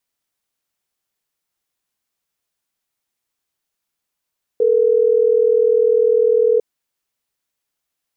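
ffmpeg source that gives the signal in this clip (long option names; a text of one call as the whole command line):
ffmpeg -f lavfi -i "aevalsrc='0.2*(sin(2*PI*440*t)+sin(2*PI*480*t))*clip(min(mod(t,6),2-mod(t,6))/0.005,0,1)':duration=3.12:sample_rate=44100" out.wav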